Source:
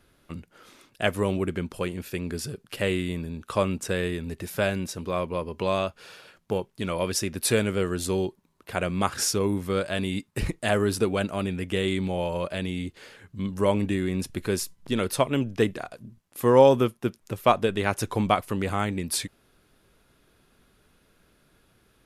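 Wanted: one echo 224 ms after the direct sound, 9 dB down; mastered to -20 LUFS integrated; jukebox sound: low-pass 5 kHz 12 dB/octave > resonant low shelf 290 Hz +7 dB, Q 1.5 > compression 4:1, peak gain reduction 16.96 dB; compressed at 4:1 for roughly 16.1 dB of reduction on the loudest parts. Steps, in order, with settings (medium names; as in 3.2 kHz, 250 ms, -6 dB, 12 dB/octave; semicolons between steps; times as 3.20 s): compression 4:1, threshold -31 dBFS; low-pass 5 kHz 12 dB/octave; resonant low shelf 290 Hz +7 dB, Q 1.5; delay 224 ms -9 dB; compression 4:1, threshold -42 dBFS; trim +24 dB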